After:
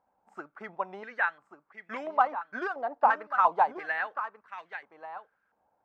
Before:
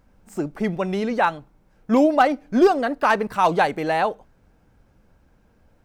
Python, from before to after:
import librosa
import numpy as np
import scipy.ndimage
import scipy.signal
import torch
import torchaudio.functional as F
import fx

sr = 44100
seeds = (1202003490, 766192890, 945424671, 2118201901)

y = fx.transient(x, sr, attack_db=5, sustain_db=-2)
y = y + 10.0 ** (-11.0 / 20.0) * np.pad(y, (int(1137 * sr / 1000.0), 0))[:len(y)]
y = fx.filter_held_bandpass(y, sr, hz=2.9, low_hz=830.0, high_hz=1900.0)
y = F.gain(torch.from_numpy(y), -1.0).numpy()